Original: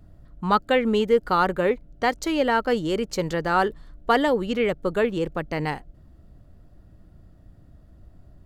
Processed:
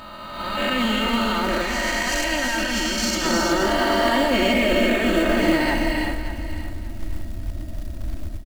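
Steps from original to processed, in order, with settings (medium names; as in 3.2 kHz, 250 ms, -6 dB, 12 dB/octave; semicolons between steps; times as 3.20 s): reverse spectral sustain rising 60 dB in 2.23 s; hum notches 60/120/180 Hz; comb 3.2 ms, depth 80%; peak limiter -20.5 dBFS, peak gain reduction 17.5 dB; peaking EQ 1.1 kHz -7.5 dB 1.3 oct; band-stop 420 Hz, Q 12; gated-style reverb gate 400 ms rising, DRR 1.5 dB; level rider gain up to 16 dB; peaking EQ 420 Hz -8.5 dB 1.5 oct, from 1.62 s -15 dB, from 3.25 s -2.5 dB; companded quantiser 6-bit; feedback delay 579 ms, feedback 24%, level -13 dB; trim -3.5 dB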